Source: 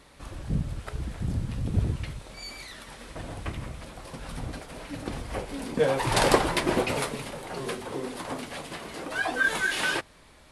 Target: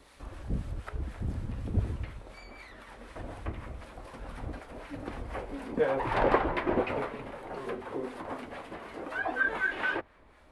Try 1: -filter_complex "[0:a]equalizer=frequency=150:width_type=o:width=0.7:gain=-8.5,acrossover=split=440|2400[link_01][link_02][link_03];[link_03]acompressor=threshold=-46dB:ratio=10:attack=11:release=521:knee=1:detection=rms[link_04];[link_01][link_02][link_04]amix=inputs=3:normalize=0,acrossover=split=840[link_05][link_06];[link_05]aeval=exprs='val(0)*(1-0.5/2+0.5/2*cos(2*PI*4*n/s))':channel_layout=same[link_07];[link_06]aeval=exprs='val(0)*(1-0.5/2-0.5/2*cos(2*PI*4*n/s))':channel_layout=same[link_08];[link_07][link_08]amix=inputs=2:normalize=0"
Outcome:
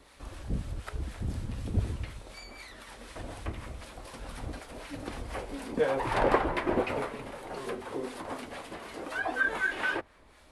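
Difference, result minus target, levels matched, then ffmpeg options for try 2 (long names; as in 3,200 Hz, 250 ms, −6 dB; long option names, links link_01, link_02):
downward compressor: peak gain reduction −11 dB
-filter_complex "[0:a]equalizer=frequency=150:width_type=o:width=0.7:gain=-8.5,acrossover=split=440|2400[link_01][link_02][link_03];[link_03]acompressor=threshold=-58dB:ratio=10:attack=11:release=521:knee=1:detection=rms[link_04];[link_01][link_02][link_04]amix=inputs=3:normalize=0,acrossover=split=840[link_05][link_06];[link_05]aeval=exprs='val(0)*(1-0.5/2+0.5/2*cos(2*PI*4*n/s))':channel_layout=same[link_07];[link_06]aeval=exprs='val(0)*(1-0.5/2-0.5/2*cos(2*PI*4*n/s))':channel_layout=same[link_08];[link_07][link_08]amix=inputs=2:normalize=0"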